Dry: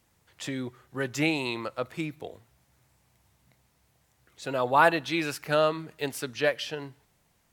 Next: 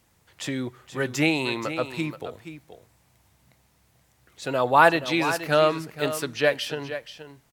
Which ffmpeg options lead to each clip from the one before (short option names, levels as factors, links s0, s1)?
-af "aecho=1:1:477:0.266,volume=1.58"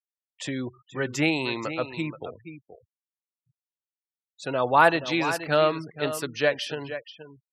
-af "afftfilt=real='re*gte(hypot(re,im),0.0112)':imag='im*gte(hypot(re,im),0.0112)':win_size=1024:overlap=0.75,volume=0.841"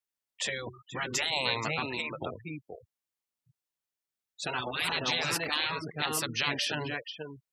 -af "afftfilt=real='re*lt(hypot(re,im),0.112)':imag='im*lt(hypot(re,im),0.112)':win_size=1024:overlap=0.75,volume=1.58"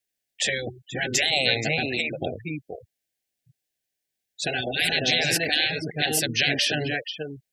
-af "asuperstop=centerf=1100:order=20:qfactor=1.6,volume=2.51"